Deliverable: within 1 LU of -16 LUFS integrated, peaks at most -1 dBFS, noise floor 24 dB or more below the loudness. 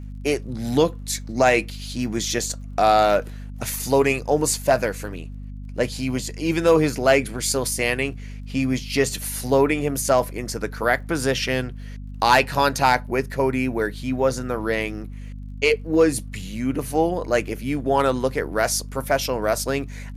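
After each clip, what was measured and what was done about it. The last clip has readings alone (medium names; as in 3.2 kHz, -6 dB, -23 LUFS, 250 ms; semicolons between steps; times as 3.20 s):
tick rate 34 per s; hum 50 Hz; highest harmonic 250 Hz; hum level -32 dBFS; loudness -22.0 LUFS; peak level -4.5 dBFS; loudness target -16.0 LUFS
-> de-click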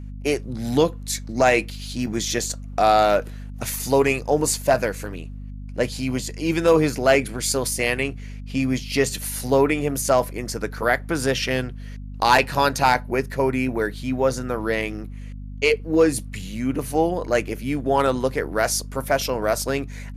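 tick rate 0.25 per s; hum 50 Hz; highest harmonic 250 Hz; hum level -32 dBFS
-> de-hum 50 Hz, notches 5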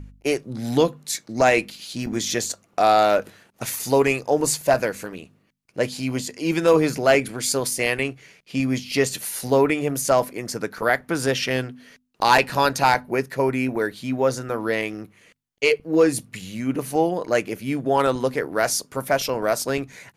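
hum not found; loudness -22.0 LUFS; peak level -4.5 dBFS; loudness target -16.0 LUFS
-> trim +6 dB; peak limiter -1 dBFS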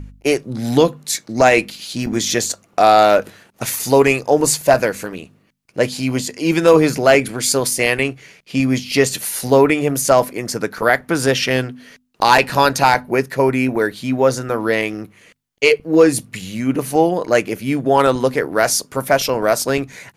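loudness -16.5 LUFS; peak level -1.0 dBFS; noise floor -57 dBFS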